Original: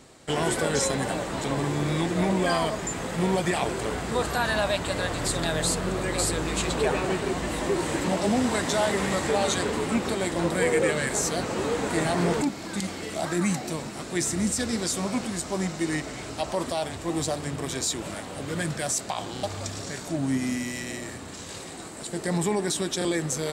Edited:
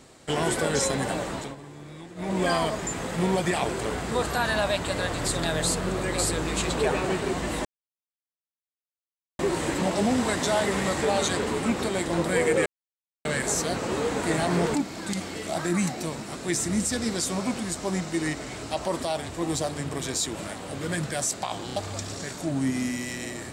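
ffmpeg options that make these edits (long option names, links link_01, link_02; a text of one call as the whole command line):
ffmpeg -i in.wav -filter_complex "[0:a]asplit=5[link_01][link_02][link_03][link_04][link_05];[link_01]atrim=end=1.56,asetpts=PTS-STARTPTS,afade=type=out:start_time=1.29:duration=0.27:silence=0.149624[link_06];[link_02]atrim=start=1.56:end=2.16,asetpts=PTS-STARTPTS,volume=-16.5dB[link_07];[link_03]atrim=start=2.16:end=7.65,asetpts=PTS-STARTPTS,afade=type=in:duration=0.27:silence=0.149624,afade=type=out:start_time=5.486:duration=0.004:curve=hsin,apad=pad_dur=1.74[link_08];[link_04]atrim=start=7.65:end=10.92,asetpts=PTS-STARTPTS,afade=type=in:duration=0.004:curve=hsin,afade=type=out:start_time=3.266:duration=0.004:curve=hsin,apad=pad_dur=0.59[link_09];[link_05]atrim=start=10.92,asetpts=PTS-STARTPTS,afade=type=in:duration=0.004:curve=hsin[link_10];[link_06][link_07][link_08][link_09][link_10]concat=n=5:v=0:a=1" out.wav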